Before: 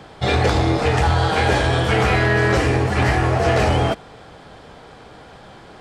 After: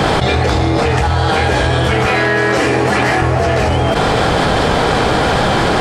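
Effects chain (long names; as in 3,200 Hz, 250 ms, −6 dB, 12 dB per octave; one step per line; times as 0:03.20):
0:02.06–0:03.22: Bessel high-pass filter 210 Hz, order 2
envelope flattener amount 100%
level +1 dB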